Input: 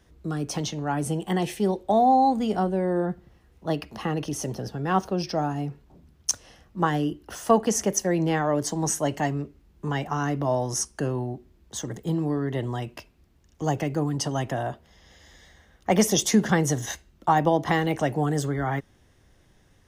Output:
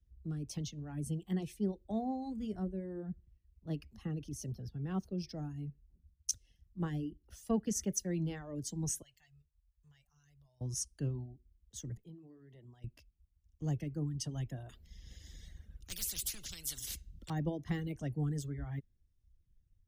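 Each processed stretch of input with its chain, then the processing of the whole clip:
9.02–10.61 passive tone stack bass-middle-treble 10-0-10 + compressor 1.5:1, threshold -50 dBFS + de-hum 101.7 Hz, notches 17
11.97–12.84 HPF 330 Hz 6 dB/oct + high shelf 5400 Hz -7.5 dB + compressor 3:1, threshold -34 dBFS
14.69–17.3 overloaded stage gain 12.5 dB + spectral compressor 10:1
whole clip: reverb removal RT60 1 s; passive tone stack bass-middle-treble 10-0-1; three-band expander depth 40%; gain +7.5 dB

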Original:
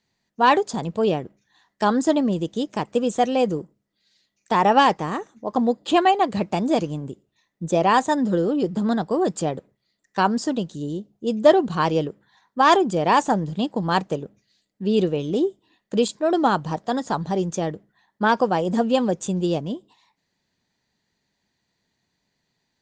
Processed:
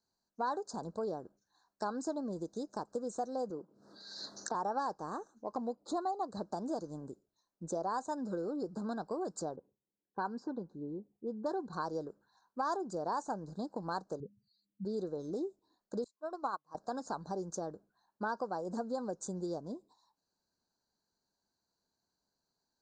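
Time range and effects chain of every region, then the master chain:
3.5–4.55 HPF 160 Hz + air absorption 130 m + backwards sustainer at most 45 dB/s
5.75–6.31 Butterworth band-stop 1600 Hz, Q 7 + mismatched tape noise reduction decoder only
9.56–11.73 low-pass opened by the level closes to 590 Hz, open at -11.5 dBFS + notch comb 640 Hz
14.2–14.85 spectral contrast raised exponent 3 + bell 83 Hz +12.5 dB 2.5 oct
16.04–16.75 HPF 380 Hz 6 dB/oct + bell 1100 Hz +11 dB 0.21 oct + upward expander 2.5:1, over -33 dBFS
whole clip: Chebyshev band-stop 1600–4000 Hz, order 4; bell 130 Hz -8 dB 1.6 oct; compressor 2.5:1, threshold -28 dBFS; gain -8.5 dB

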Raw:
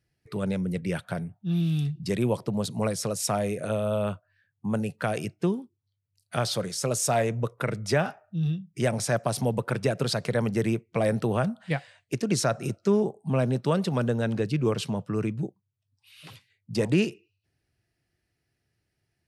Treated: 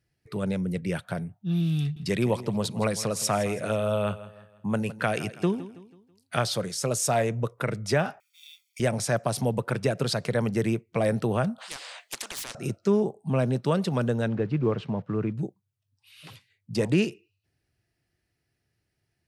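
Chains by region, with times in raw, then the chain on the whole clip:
1.8–6.42 bell 2200 Hz +5 dB 2.1 oct + feedback echo 0.163 s, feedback 41%, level -16 dB
8.2–8.8 G.711 law mismatch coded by mu + Chebyshev high-pass 2300 Hz, order 4 + comb 0.9 ms, depth 84%
11.58–12.55 HPF 470 Hz 24 dB/oct + overdrive pedal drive 10 dB, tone 3900 Hz, clips at -14.5 dBFS + spectral compressor 10:1
14.28–15.34 block floating point 5-bit + LPF 1900 Hz
whole clip: dry

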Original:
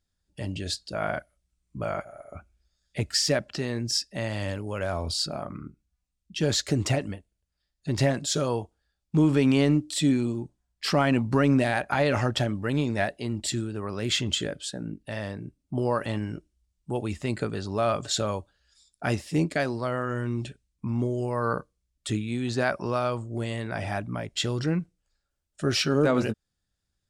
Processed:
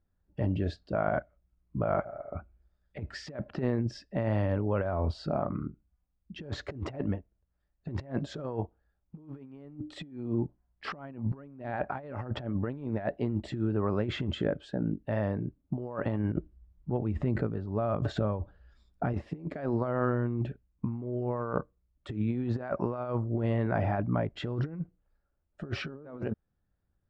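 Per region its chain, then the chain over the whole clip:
16.32–19.14 low shelf 270 Hz +7.5 dB + negative-ratio compressor -29 dBFS
whole clip: LPF 1200 Hz 12 dB/oct; negative-ratio compressor -31 dBFS, ratio -0.5

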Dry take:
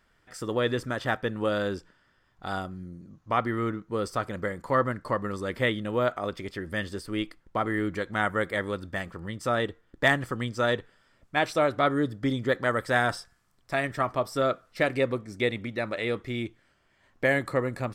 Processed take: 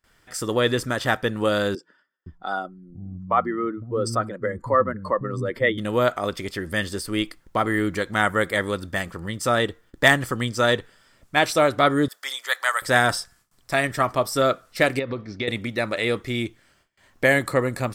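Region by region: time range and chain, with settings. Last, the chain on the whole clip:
1.75–5.78 spectral contrast raised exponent 1.6 + bands offset in time highs, lows 0.51 s, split 230 Hz
12.08–12.82 HPF 820 Hz 24 dB/oct + high shelf 6000 Hz +8 dB
14.99–15.48 steep low-pass 4900 Hz + compressor 12:1, threshold -28 dBFS
whole clip: gate with hold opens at -57 dBFS; high shelf 4700 Hz +10.5 dB; gain +5 dB

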